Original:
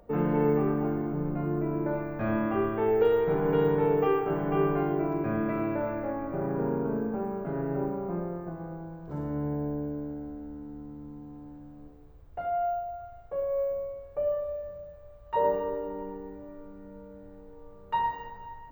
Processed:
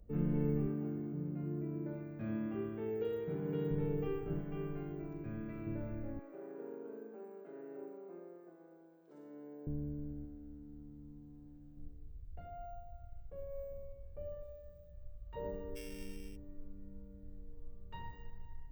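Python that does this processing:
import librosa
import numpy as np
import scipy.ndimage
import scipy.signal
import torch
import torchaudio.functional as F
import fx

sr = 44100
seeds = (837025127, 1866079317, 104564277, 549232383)

y = fx.highpass(x, sr, hz=170.0, slope=12, at=(0.66, 3.71))
y = fx.low_shelf(y, sr, hz=430.0, db=-8.0, at=(4.41, 5.67))
y = fx.highpass(y, sr, hz=370.0, slope=24, at=(6.19, 9.67))
y = fx.low_shelf(y, sr, hz=160.0, db=-8.5, at=(10.25, 11.77))
y = fx.bass_treble(y, sr, bass_db=-6, treble_db=5, at=(14.43, 14.91))
y = fx.sample_sort(y, sr, block=16, at=(15.75, 16.35), fade=0.02)
y = fx.tone_stack(y, sr, knobs='10-0-1')
y = y * librosa.db_to_amplitude(10.0)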